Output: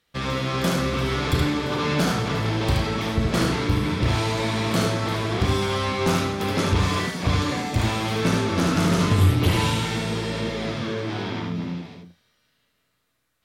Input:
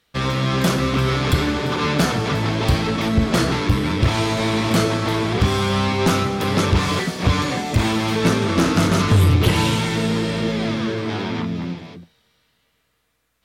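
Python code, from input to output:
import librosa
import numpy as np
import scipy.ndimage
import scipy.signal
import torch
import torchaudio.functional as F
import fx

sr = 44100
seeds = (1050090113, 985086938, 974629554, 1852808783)

y = fx.doubler(x, sr, ms=34.0, db=-11.5)
y = y + 10.0 ** (-3.5 / 20.0) * np.pad(y, (int(74 * sr / 1000.0), 0))[:len(y)]
y = y * 10.0 ** (-5.5 / 20.0)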